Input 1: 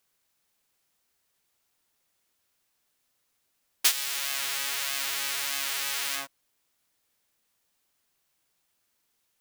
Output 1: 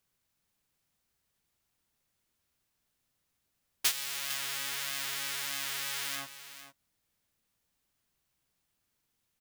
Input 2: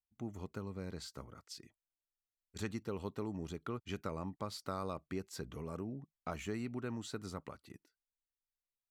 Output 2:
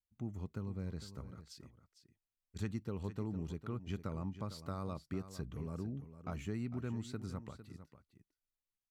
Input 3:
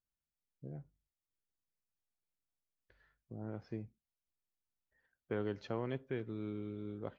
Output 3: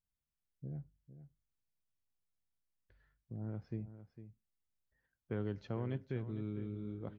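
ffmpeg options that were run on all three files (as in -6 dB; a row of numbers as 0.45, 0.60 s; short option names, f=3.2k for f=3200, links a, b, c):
-af "bass=f=250:g=10,treble=f=4k:g=-1,aecho=1:1:454:0.237,volume=-5dB"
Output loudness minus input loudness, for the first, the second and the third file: -5.5, +0.5, 0.0 LU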